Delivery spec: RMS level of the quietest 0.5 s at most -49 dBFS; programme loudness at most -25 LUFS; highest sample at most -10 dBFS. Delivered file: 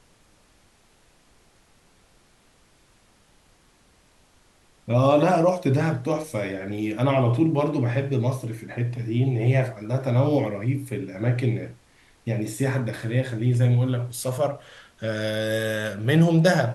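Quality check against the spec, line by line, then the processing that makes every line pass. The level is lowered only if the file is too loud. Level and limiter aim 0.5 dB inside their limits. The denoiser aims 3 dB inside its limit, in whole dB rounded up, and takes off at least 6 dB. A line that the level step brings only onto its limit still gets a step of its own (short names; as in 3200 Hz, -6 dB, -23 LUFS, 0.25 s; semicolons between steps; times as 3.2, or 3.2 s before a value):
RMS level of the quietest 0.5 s -59 dBFS: OK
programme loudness -23.5 LUFS: fail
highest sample -7.0 dBFS: fail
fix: gain -2 dB; limiter -10.5 dBFS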